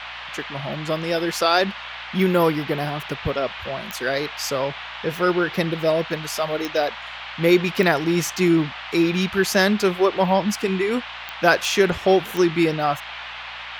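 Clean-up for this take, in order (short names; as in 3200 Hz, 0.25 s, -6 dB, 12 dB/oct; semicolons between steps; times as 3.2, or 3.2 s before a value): de-click; de-hum 58.9 Hz, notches 5; noise print and reduce 30 dB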